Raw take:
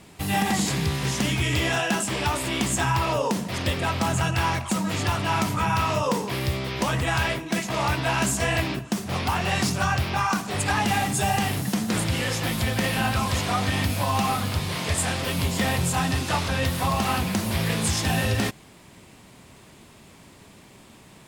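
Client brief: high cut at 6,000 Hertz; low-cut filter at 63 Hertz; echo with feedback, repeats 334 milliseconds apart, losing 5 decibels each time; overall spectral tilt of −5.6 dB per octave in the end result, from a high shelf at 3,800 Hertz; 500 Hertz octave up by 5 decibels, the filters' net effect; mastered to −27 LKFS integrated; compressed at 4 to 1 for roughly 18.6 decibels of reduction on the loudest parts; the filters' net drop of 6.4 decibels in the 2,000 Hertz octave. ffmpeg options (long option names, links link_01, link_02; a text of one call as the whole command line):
ffmpeg -i in.wav -af "highpass=63,lowpass=6000,equalizer=frequency=500:width_type=o:gain=7,equalizer=frequency=2000:width_type=o:gain=-6.5,highshelf=frequency=3800:gain=-8.5,acompressor=threshold=-40dB:ratio=4,aecho=1:1:334|668|1002|1336|1670|2004|2338:0.562|0.315|0.176|0.0988|0.0553|0.031|0.0173,volume=12dB" out.wav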